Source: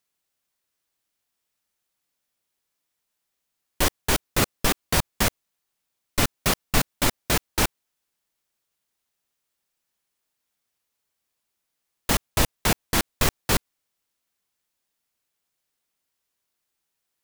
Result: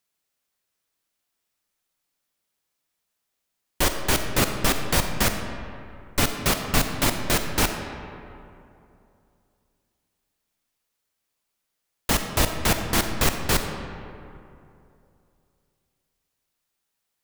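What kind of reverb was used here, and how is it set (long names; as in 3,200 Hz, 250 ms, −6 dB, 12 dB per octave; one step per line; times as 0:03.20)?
comb and all-pass reverb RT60 2.7 s, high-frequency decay 0.5×, pre-delay 5 ms, DRR 5.5 dB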